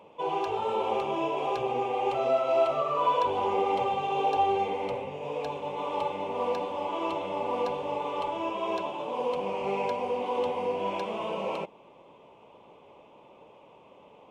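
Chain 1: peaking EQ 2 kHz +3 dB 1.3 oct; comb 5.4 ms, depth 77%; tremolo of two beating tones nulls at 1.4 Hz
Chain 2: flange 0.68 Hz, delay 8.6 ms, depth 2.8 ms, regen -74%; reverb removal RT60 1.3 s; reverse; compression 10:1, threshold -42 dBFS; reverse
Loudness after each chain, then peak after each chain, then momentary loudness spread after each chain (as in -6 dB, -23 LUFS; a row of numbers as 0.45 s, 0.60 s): -30.5 LUFS, -46.0 LUFS; -13.5 dBFS, -33.5 dBFS; 9 LU, 16 LU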